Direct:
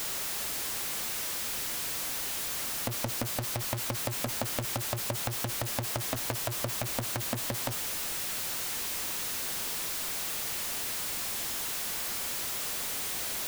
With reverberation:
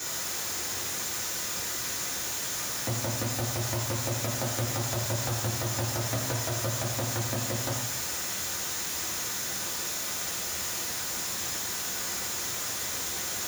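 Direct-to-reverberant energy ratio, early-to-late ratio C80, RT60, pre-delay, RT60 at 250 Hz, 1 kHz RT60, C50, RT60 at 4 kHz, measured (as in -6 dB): -5.0 dB, 5.5 dB, 1.1 s, 3 ms, 0.95 s, 1.1 s, 3.5 dB, 1.1 s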